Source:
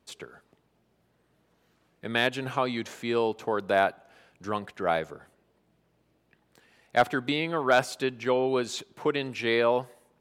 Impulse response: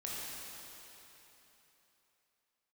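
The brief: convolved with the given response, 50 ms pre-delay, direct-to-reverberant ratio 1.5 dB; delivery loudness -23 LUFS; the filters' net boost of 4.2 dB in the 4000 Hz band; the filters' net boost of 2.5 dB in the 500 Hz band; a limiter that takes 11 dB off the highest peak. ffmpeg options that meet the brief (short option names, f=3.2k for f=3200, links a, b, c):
-filter_complex "[0:a]equalizer=f=500:t=o:g=3,equalizer=f=4k:t=o:g=5,alimiter=limit=-18.5dB:level=0:latency=1,asplit=2[a][b];[1:a]atrim=start_sample=2205,adelay=50[c];[b][c]afir=irnorm=-1:irlink=0,volume=-3.5dB[d];[a][d]amix=inputs=2:normalize=0,volume=6dB"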